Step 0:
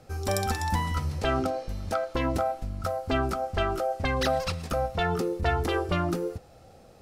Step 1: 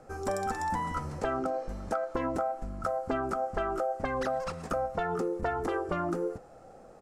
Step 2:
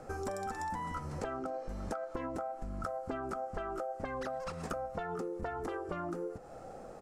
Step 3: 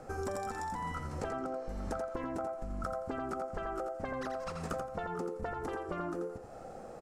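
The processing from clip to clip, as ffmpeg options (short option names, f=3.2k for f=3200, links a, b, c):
-af "equalizer=f=81:t=o:w=1.6:g=-14.5,acompressor=threshold=-30dB:ratio=6,firequalizer=gain_entry='entry(1400,0);entry(2400,-10);entry(3800,-15);entry(7400,-5);entry(13000,-16)':delay=0.05:min_phase=1,volume=3dB"
-af "acompressor=threshold=-40dB:ratio=6,volume=4dB"
-af "aecho=1:1:85|170|255:0.473|0.0994|0.0209"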